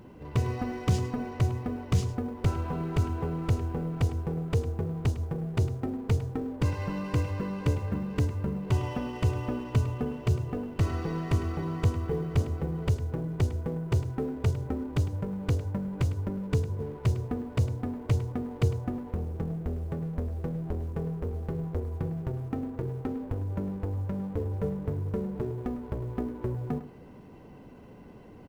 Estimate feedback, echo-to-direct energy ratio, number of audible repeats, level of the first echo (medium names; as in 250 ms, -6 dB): no regular repeats, -14.5 dB, 1, -14.5 dB